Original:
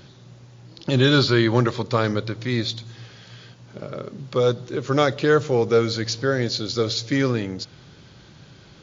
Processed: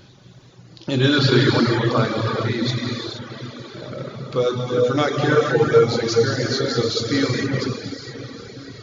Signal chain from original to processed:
feedback delay with all-pass diffusion 673 ms, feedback 52%, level −12.5 dB
reverb whose tail is shaped and stops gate 500 ms flat, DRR −3.5 dB
reverb reduction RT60 0.94 s
level −1 dB

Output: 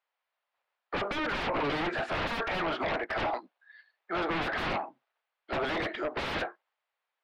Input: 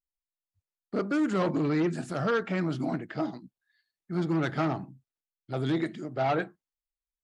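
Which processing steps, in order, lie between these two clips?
high-pass filter 590 Hz 24 dB per octave
high-shelf EQ 3,400 Hz −6 dB
in parallel at −2 dB: downward compressor 5 to 1, threshold −40 dBFS, peak gain reduction 13.5 dB
on the sum: sine wavefolder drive 20 dB, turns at −18 dBFS
high-frequency loss of the air 370 metres
level −6.5 dB

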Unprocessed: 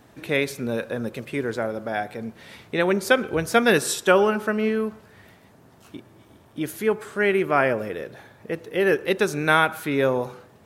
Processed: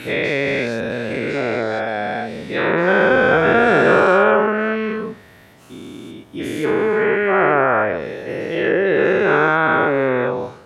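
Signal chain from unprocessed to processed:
every bin's largest magnitude spread in time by 480 ms
treble cut that deepens with the level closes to 1,800 Hz, closed at −11 dBFS
level −1.5 dB

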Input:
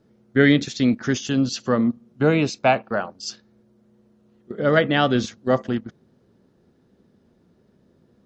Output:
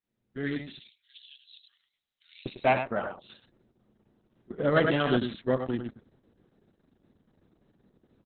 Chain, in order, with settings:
fade in at the beginning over 1.45 s
0:00.79–0:02.46: inverse Chebyshev high-pass filter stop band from 840 Hz, stop band 70 dB
0:03.12–0:04.55: downward expander −56 dBFS
single-tap delay 101 ms −7.5 dB
level −5.5 dB
Opus 6 kbit/s 48,000 Hz

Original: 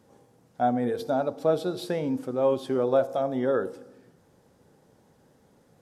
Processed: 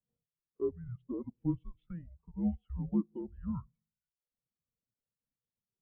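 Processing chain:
single-sideband voice off tune −330 Hz 330–3,000 Hz
reverb reduction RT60 0.95 s
every bin expanded away from the loudest bin 1.5 to 1
level −8 dB

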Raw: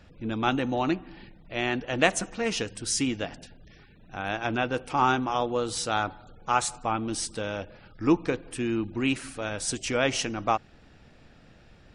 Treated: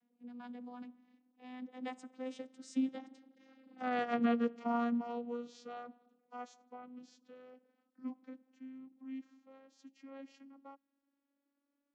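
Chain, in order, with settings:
vocoder with a gliding carrier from A3, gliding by +6 semitones
source passing by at 0:03.90, 29 m/s, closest 7.3 metres
level +3 dB

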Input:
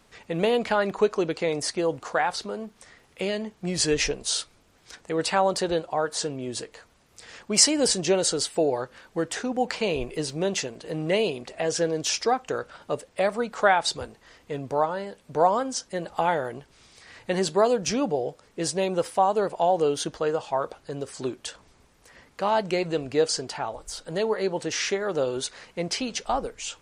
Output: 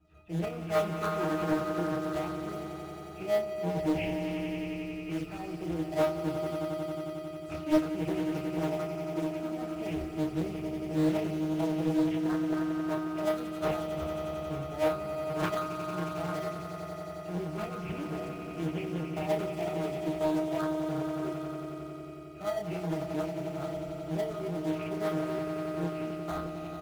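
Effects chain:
every frequency bin delayed by itself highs early, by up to 119 ms
harmonic generator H 2 −14 dB, 3 −10 dB, 7 −16 dB, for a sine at −4 dBFS
resonances in every octave D#, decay 0.22 s
in parallel at −5 dB: decimation without filtering 17×
on the sum: double-tracking delay 29 ms −5 dB
echo that builds up and dies away 90 ms, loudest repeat 5, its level −10.5 dB
highs frequency-modulated by the lows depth 0.66 ms
level +2.5 dB

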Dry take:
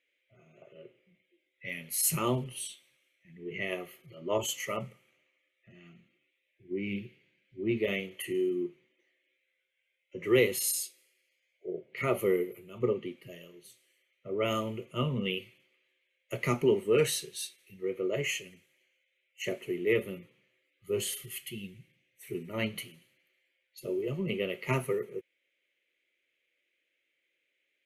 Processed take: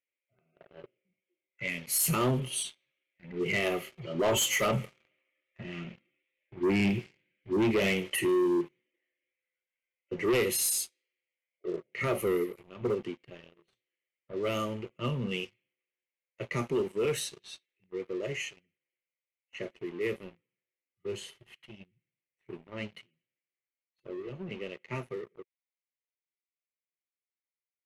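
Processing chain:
source passing by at 0:05.87, 6 m/s, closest 8.9 metres
in parallel at +0.5 dB: brickwall limiter −31.5 dBFS, peak gain reduction 11 dB
on the sum: leveller curve on the samples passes 3
low-pass that shuts in the quiet parts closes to 2,600 Hz, open at −24.5 dBFS
level −2.5 dB

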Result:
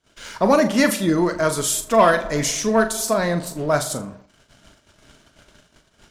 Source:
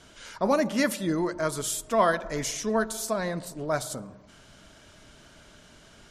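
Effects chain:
leveller curve on the samples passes 1
noise gate −51 dBFS, range −24 dB
flutter between parallel walls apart 6.9 metres, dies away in 0.24 s
level +4.5 dB

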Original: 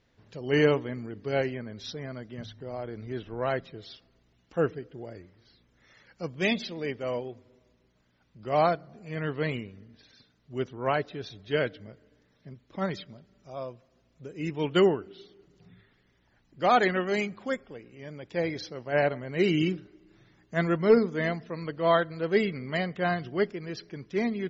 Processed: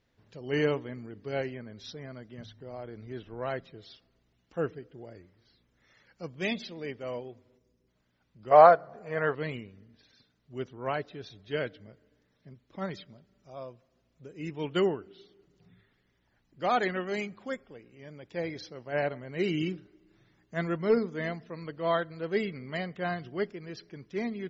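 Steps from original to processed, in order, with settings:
0:07.57–0:07.88: gain on a spectral selection 530–4,700 Hz −8 dB
0:08.51–0:09.35: flat-topped bell 890 Hz +13 dB 2.4 octaves
level −5 dB

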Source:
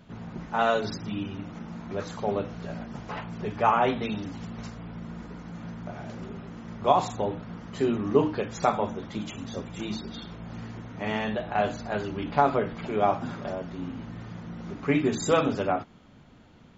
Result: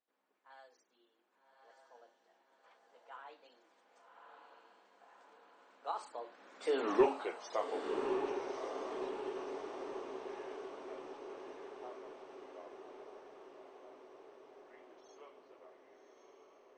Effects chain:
source passing by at 0:06.91, 50 m/s, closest 4.3 metres
high-pass filter 410 Hz 24 dB per octave
soft clipping −23 dBFS, distortion −15 dB
on a send: feedback delay with all-pass diffusion 1,161 ms, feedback 63%, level −4.5 dB
on the sum: level +4.5 dB

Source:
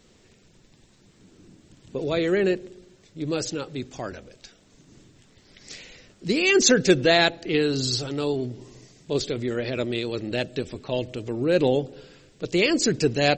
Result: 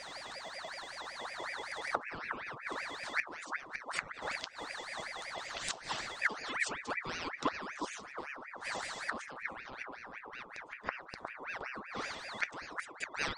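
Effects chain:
fade-out on the ending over 1.75 s
steady tone 2,700 Hz −54 dBFS
in parallel at +1.5 dB: downward compressor 10 to 1, threshold −34 dBFS, peak gain reduction 21.5 dB
on the sum: gate with flip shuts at −21 dBFS, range −25 dB
0:09.84–0:11.07: high shelf with overshoot 2,200 Hz −8 dB, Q 1.5
delay with a low-pass on its return 360 ms, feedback 54%, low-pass 430 Hz, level −4 dB
flanger 0.36 Hz, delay 3.4 ms, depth 2.5 ms, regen +70%
ring modulator whose carrier an LFO sweeps 1,400 Hz, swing 55%, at 5.3 Hz
level +8.5 dB

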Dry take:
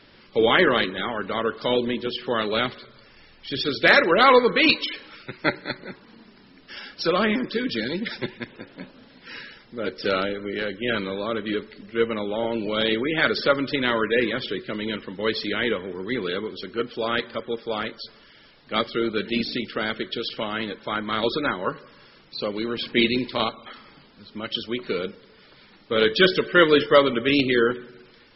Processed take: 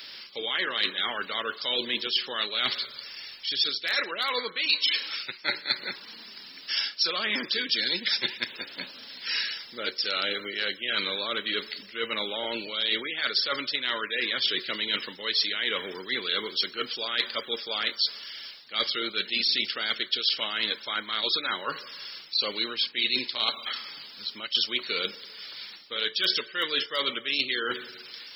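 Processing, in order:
spectral tilt +4 dB per octave
reversed playback
downward compressor 10 to 1, threshold −29 dBFS, peak gain reduction 21.5 dB
reversed playback
high-shelf EQ 3,000 Hz +11.5 dB

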